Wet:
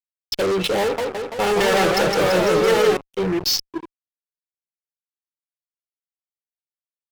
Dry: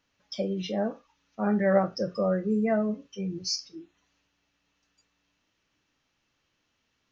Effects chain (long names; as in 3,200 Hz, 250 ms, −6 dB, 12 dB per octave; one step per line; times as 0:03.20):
adaptive Wiener filter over 25 samples
noise gate with hold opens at −51 dBFS
parametric band 2,900 Hz +13 dB 1.1 octaves
comb filter 2.3 ms, depth 90%
hum removal 81.44 Hz, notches 16
fuzz pedal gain 38 dB, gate −43 dBFS
0:00.81–0:02.97: feedback echo with a swinging delay time 168 ms, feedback 66%, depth 213 cents, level −3 dB
level −4.5 dB